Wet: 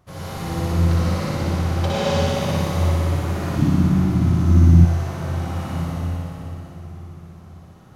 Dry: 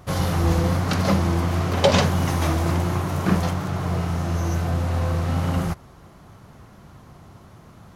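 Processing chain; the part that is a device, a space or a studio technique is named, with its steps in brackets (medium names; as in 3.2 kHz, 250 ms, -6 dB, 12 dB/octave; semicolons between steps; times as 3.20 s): tunnel (flutter echo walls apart 10.2 m, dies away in 1.4 s; reverberation RT60 3.9 s, pre-delay 61 ms, DRR -6.5 dB); 3.57–4.85 s: resonant low shelf 350 Hz +8.5 dB, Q 3; trim -13 dB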